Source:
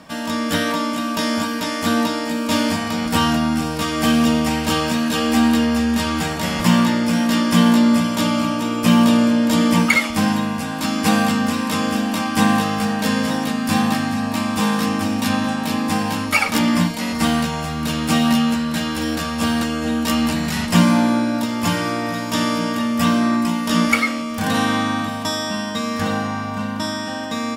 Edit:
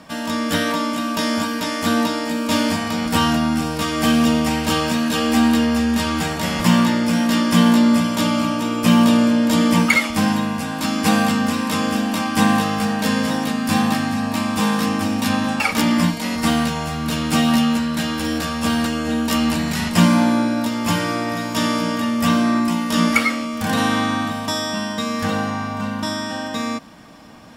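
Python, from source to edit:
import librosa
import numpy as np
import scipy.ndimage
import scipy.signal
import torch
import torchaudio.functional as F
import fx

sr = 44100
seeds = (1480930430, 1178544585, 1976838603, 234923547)

y = fx.edit(x, sr, fx.cut(start_s=15.6, length_s=0.77), tone=tone)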